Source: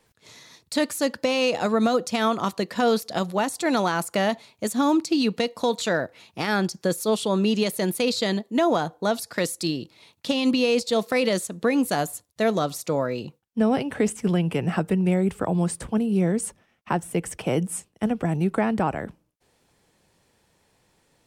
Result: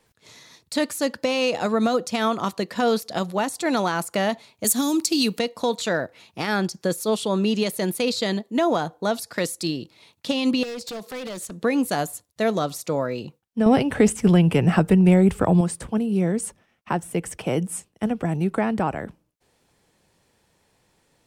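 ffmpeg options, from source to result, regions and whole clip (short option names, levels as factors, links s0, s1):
-filter_complex "[0:a]asettb=1/sr,asplit=3[s0][s1][s2];[s0]atrim=end=4.644[s3];[s1]atrim=start=4.64:end=5.39,asetpts=PTS-STARTPTS,afade=t=in:d=0.004:c=qsin,afade=t=out:st=0.746:d=0.004:c=qsin,acrossover=split=390|3000[s4][s5][s6];[s5]acompressor=threshold=0.0355:ratio=6:attack=3.2:release=140:knee=2.83:detection=peak[s7];[s4][s7][s6]amix=inputs=3:normalize=0,aemphasis=mode=production:type=75kf[s8];[s2]atrim=start=5.386[s9];[s3][s8]acrossfade=d=0.004:c1=hsin:c2=qsin[s10];[s10][s9]acrossfade=d=0.004:c1=qsin:c2=hsin,asettb=1/sr,asplit=3[s11][s12][s13];[s11]atrim=end=10.634[s14];[s12]atrim=start=10.63:end=11.53,asetpts=PTS-STARTPTS,afade=t=in:d=0.004:c=qsin,afade=t=out:st=0.896:d=0.004:c=qsin,acompressor=threshold=0.0447:ratio=10:attack=3.2:release=140:knee=1:detection=peak,aeval=exprs='0.0422*(abs(mod(val(0)/0.0422+3,4)-2)-1)':c=same[s15];[s13]atrim=start=11.526[s16];[s14][s15]acrossfade=d=0.004:c1=hsin:c2=qsin[s17];[s17][s16]acrossfade=d=0.004:c1=qsin:c2=hsin,asettb=1/sr,asplit=3[s18][s19][s20];[s18]atrim=end=13.664[s21];[s19]atrim=start=13.66:end=15.61,asetpts=PTS-STARTPTS,afade=t=in:d=0.004:c=qsin,afade=t=out:st=1.946:d=0.004:c=qsin,lowshelf=f=76:g=12,acontrast=26[s22];[s20]atrim=start=15.606[s23];[s21][s22]acrossfade=d=0.004:c1=hsin:c2=qsin[s24];[s24][s23]acrossfade=d=0.004:c1=qsin:c2=hsin"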